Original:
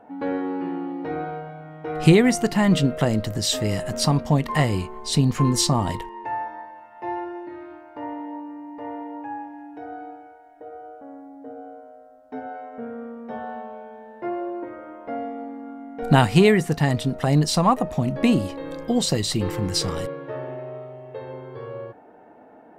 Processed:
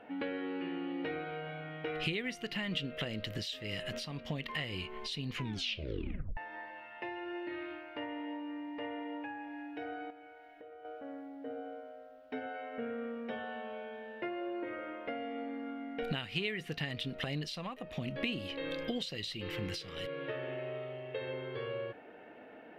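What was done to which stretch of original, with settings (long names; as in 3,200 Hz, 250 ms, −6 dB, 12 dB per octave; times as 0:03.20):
0:05.36: tape stop 1.01 s
0:10.10–0:10.85: downward compressor 4 to 1, threshold −46 dBFS
whole clip: tilt shelving filter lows −8 dB, about 910 Hz; downward compressor 10 to 1, threshold −35 dBFS; drawn EQ curve 540 Hz 0 dB, 880 Hz −11 dB, 2,900 Hz +4 dB, 7,900 Hz −21 dB, 12,000 Hz −15 dB; level +2 dB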